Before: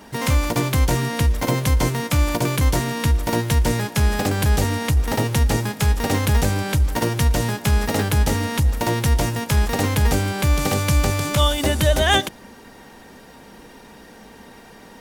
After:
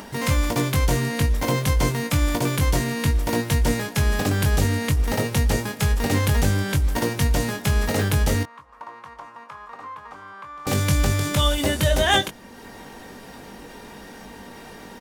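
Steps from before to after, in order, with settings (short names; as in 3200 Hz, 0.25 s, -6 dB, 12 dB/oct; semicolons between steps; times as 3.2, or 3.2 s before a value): 8.43–10.67 band-pass 1100 Hz, Q 7.6; doubler 21 ms -6 dB; upward compressor, threshold -31 dBFS; gain -2.5 dB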